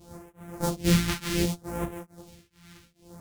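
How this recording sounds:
a buzz of ramps at a fixed pitch in blocks of 256 samples
phaser sweep stages 2, 0.66 Hz, lowest notch 530–4,400 Hz
tremolo triangle 2.3 Hz, depth 100%
a shimmering, thickened sound

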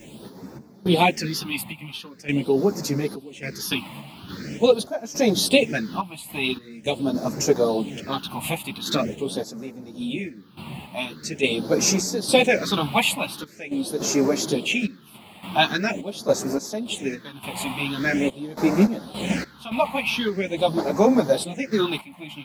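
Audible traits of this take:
a quantiser's noise floor 10 bits, dither triangular
phaser sweep stages 6, 0.44 Hz, lowest notch 410–3,100 Hz
sample-and-hold tremolo, depth 90%
a shimmering, thickened sound

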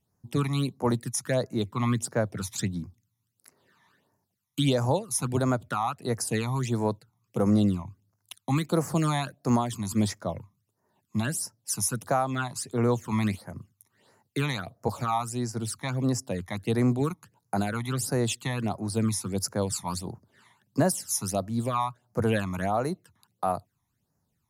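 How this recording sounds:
phaser sweep stages 12, 1.5 Hz, lowest notch 470–3,400 Hz

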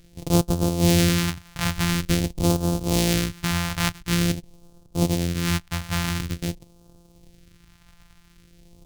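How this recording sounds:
a buzz of ramps at a fixed pitch in blocks of 256 samples
phaser sweep stages 2, 0.47 Hz, lowest notch 400–1,900 Hz

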